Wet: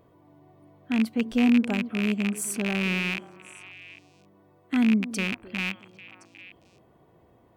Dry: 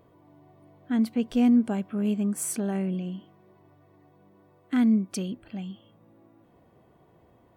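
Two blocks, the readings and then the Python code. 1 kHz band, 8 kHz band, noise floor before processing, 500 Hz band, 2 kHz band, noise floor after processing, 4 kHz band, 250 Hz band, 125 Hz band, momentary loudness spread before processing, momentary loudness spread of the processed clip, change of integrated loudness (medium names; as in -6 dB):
+2.0 dB, 0.0 dB, -60 dBFS, 0.0 dB, +14.5 dB, -60 dBFS, +10.5 dB, 0.0 dB, 0.0 dB, 16 LU, 21 LU, +1.0 dB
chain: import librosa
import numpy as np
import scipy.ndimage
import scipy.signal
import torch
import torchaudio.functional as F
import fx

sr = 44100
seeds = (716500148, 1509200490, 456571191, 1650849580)

y = fx.rattle_buzz(x, sr, strikes_db=-39.0, level_db=-17.0)
y = fx.echo_stepped(y, sr, ms=267, hz=360.0, octaves=1.4, feedback_pct=70, wet_db=-10.0)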